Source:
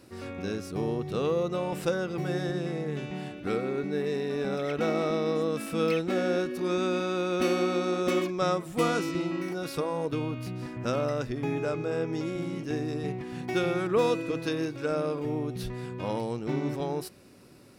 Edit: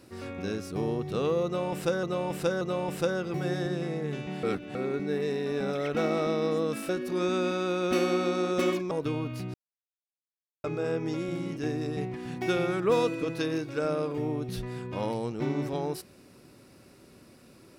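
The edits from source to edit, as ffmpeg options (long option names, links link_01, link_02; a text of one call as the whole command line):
ffmpeg -i in.wav -filter_complex "[0:a]asplit=9[link_01][link_02][link_03][link_04][link_05][link_06][link_07][link_08][link_09];[link_01]atrim=end=2.032[link_10];[link_02]atrim=start=1.448:end=2.032[link_11];[link_03]atrim=start=1.448:end=3.272[link_12];[link_04]atrim=start=3.268:end=3.592,asetpts=PTS-STARTPTS,areverse[link_13];[link_05]atrim=start=3.588:end=5.732[link_14];[link_06]atrim=start=6.378:end=8.402[link_15];[link_07]atrim=start=9.978:end=10.61,asetpts=PTS-STARTPTS,afade=type=out:start_time=0.628:duration=0.004:curve=hsin[link_16];[link_08]atrim=start=10.61:end=11.71,asetpts=PTS-STARTPTS,volume=0[link_17];[link_09]atrim=start=11.71,asetpts=PTS-STARTPTS,afade=type=in:duration=0.004:curve=hsin[link_18];[link_10][link_11]acrossfade=duration=0.004:curve1=hsin:curve2=hsin[link_19];[link_19][link_12]acrossfade=duration=0.004:curve1=hsin:curve2=hsin[link_20];[link_20][link_13]acrossfade=duration=0.004:curve1=hsin:curve2=hsin[link_21];[link_21][link_14]acrossfade=duration=0.004:curve1=hsin:curve2=hsin[link_22];[link_22][link_15]acrossfade=duration=0.004:curve1=hsin:curve2=hsin[link_23];[link_16][link_17][link_18]concat=n=3:v=0:a=1[link_24];[link_23][link_24]acrossfade=duration=0.004:curve1=hsin:curve2=hsin" out.wav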